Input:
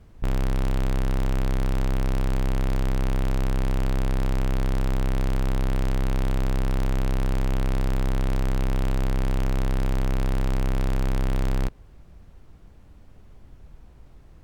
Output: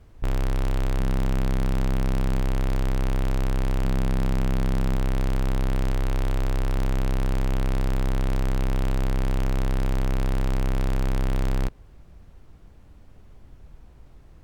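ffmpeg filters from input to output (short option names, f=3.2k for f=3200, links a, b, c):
-af "asetnsamples=n=441:p=0,asendcmd='0.99 equalizer g 4.5;2.41 equalizer g -2;3.84 equalizer g 6.5;4.96 equalizer g 0;5.93 equalizer g -9;6.76 equalizer g -1',equalizer=f=190:t=o:w=0.48:g=-7"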